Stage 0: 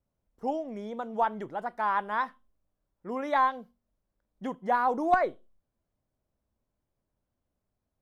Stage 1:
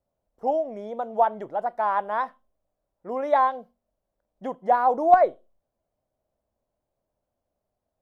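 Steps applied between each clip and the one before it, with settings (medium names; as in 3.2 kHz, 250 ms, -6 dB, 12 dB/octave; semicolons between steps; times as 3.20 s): peaking EQ 640 Hz +13 dB 1.1 oct; trim -3 dB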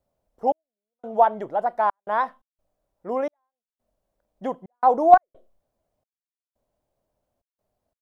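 trance gate "xxx...xxxxx.xx.x" 87 bpm -60 dB; trim +3.5 dB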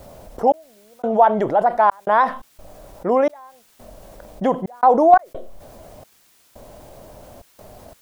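level flattener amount 50%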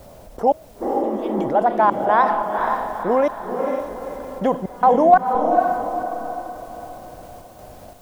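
spectral replace 0.84–1.42 s, 220–2200 Hz after; echo that smears into a reverb 488 ms, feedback 44%, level -4 dB; trim -1 dB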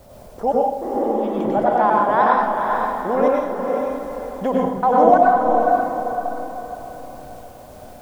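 plate-style reverb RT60 0.69 s, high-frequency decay 0.85×, pre-delay 85 ms, DRR -2.5 dB; trim -3.5 dB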